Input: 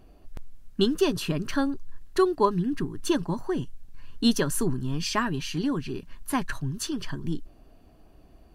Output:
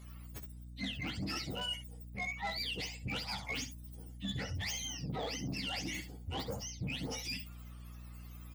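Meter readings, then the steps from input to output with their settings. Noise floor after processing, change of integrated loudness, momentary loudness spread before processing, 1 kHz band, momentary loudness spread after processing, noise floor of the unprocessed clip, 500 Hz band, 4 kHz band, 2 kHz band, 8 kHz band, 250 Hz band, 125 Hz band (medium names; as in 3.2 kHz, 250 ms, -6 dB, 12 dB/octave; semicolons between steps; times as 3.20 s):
-49 dBFS, -11.5 dB, 10 LU, -13.5 dB, 13 LU, -54 dBFS, -19.0 dB, -4.0 dB, -4.5 dB, -7.5 dB, -17.0 dB, -9.5 dB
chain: spectrum inverted on a logarithmic axis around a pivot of 900 Hz; peaking EQ 3.4 kHz -2.5 dB; reverse; compression 16:1, threshold -34 dBFS, peak gain reduction 17 dB; reverse; saturation -34.5 dBFS, distortion -14 dB; hum 60 Hz, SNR 10 dB; on a send: early reflections 15 ms -10 dB, 66 ms -11 dB; on the sum: trim +1 dB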